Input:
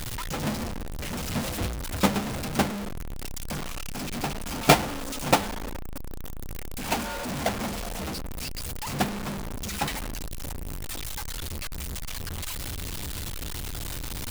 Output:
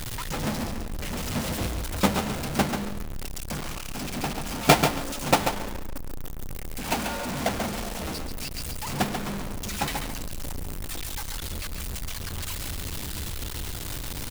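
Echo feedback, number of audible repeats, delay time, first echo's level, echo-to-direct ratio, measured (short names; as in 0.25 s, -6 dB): 19%, 2, 0.138 s, -6.5 dB, -6.5 dB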